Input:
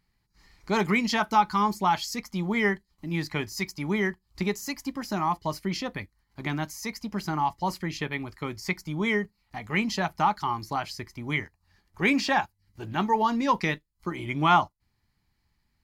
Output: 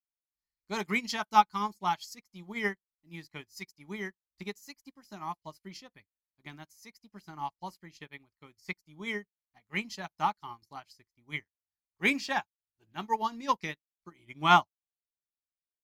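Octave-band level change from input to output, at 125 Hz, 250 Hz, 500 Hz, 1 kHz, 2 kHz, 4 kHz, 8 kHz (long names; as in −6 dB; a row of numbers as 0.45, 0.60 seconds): −12.5, −11.5, −9.0, −4.5, −5.5, −4.5, −8.5 decibels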